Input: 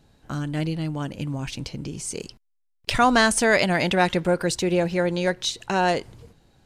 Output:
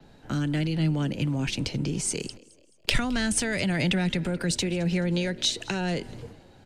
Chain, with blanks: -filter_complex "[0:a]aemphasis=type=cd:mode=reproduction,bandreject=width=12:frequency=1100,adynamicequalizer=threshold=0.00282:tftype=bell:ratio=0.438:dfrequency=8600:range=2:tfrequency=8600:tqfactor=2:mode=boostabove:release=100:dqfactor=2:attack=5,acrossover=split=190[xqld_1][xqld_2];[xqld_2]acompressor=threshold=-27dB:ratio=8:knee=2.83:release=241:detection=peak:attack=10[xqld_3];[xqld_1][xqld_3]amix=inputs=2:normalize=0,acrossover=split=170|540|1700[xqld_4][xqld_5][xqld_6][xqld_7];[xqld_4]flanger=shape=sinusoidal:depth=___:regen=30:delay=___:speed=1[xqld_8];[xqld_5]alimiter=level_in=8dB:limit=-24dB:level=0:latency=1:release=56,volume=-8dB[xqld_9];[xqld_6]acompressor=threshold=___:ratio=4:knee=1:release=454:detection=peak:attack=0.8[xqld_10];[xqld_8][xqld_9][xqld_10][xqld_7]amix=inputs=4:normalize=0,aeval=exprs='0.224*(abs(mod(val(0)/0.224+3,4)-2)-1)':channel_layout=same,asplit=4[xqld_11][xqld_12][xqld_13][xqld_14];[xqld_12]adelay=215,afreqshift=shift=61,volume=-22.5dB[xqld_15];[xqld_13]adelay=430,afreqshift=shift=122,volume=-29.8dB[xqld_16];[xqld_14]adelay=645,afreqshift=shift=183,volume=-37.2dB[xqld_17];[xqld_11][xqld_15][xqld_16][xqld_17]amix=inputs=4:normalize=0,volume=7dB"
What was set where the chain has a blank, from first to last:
6, 5.2, -49dB